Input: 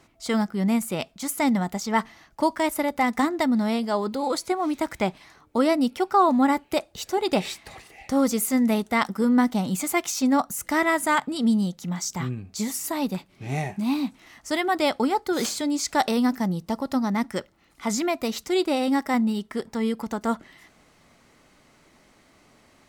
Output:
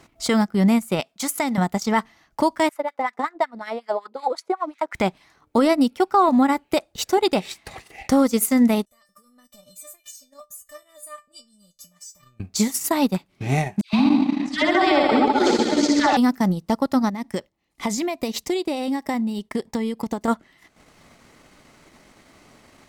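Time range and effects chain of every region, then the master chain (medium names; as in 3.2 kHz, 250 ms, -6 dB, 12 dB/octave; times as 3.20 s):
1.00–1.58 s: high-pass 340 Hz 6 dB/octave + compression 2.5:1, threshold -28 dBFS
2.69–4.95 s: tilt EQ +3 dB/octave + wah-wah 5.4 Hz 410–2100 Hz, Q 2.3
8.85–12.40 s: tone controls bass +5 dB, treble +11 dB + compression 4:1, threshold -29 dBFS + feedback comb 600 Hz, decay 0.26 s, mix 100%
13.81–16.17 s: low-pass 4.3 kHz + phase dispersion lows, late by 122 ms, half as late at 1.4 kHz + reverse bouncing-ball echo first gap 60 ms, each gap 1.1×, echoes 6, each echo -2 dB
17.09–20.28 s: gate -52 dBFS, range -7 dB + peaking EQ 1.4 kHz -11.5 dB 0.32 oct + compression 4:1, threshold -28 dBFS
whole clip: transient shaper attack +4 dB, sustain -11 dB; peak limiter -14 dBFS; trim +5.5 dB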